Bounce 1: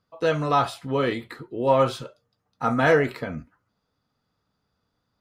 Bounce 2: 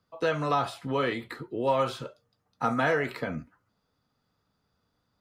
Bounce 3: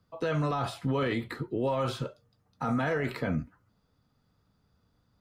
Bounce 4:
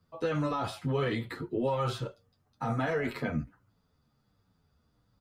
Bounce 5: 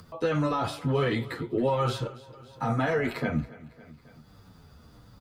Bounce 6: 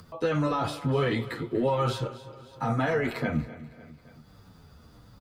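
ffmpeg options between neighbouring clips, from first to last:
-filter_complex "[0:a]acrossover=split=110|670|2700[a][b][c][d];[a]acompressor=threshold=-52dB:ratio=4[e];[b]acompressor=threshold=-29dB:ratio=4[f];[c]acompressor=threshold=-26dB:ratio=4[g];[d]acompressor=threshold=-43dB:ratio=4[h];[e][f][g][h]amix=inputs=4:normalize=0"
-af "lowshelf=f=230:g=10,alimiter=limit=-21dB:level=0:latency=1:release=12"
-filter_complex "[0:a]asplit=2[a][b];[b]adelay=9,afreqshift=-1.3[c];[a][c]amix=inputs=2:normalize=1,volume=2dB"
-af "aecho=1:1:276|552|828:0.112|0.0415|0.0154,acompressor=mode=upward:threshold=-43dB:ratio=2.5,volume=4dB"
-af "aecho=1:1:242|484|726:0.126|0.0415|0.0137"

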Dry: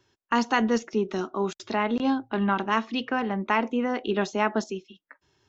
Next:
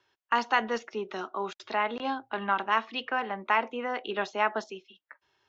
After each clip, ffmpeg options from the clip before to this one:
-filter_complex "[0:a]acrossover=split=500 4600:gain=0.178 1 0.158[a][b][c];[a][b][c]amix=inputs=3:normalize=0"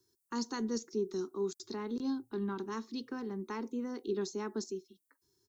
-af "firequalizer=gain_entry='entry(390,0);entry(620,-29);entry(950,-19);entry(2800,-28);entry(4200,-4);entry(8700,12)':delay=0.05:min_phase=1,volume=3dB"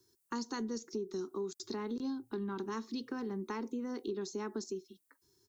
-af "acompressor=threshold=-39dB:ratio=6,volume=4dB"

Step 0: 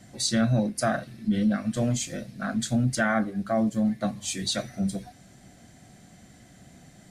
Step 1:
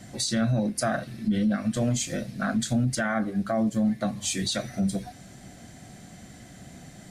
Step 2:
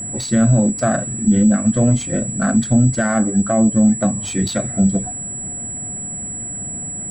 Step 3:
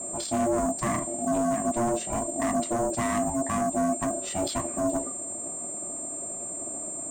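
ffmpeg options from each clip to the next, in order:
-filter_complex "[0:a]asplit=2[a][b];[b]acompressor=threshold=-33dB:ratio=6,volume=-1dB[c];[a][c]amix=inputs=2:normalize=0,alimiter=limit=-17.5dB:level=0:latency=1:release=75"
-af "adynamicsmooth=sensitivity=2:basefreq=2k,aeval=exprs='val(0)+0.0316*sin(2*PI*7800*n/s)':c=same,tiltshelf=f=770:g=3.5,volume=8dB"
-af "asoftclip=type=hard:threshold=-16dB,aeval=exprs='val(0)*sin(2*PI*470*n/s)':c=same,flanger=delay=1.6:depth=7.1:regen=-73:speed=0.47:shape=sinusoidal"

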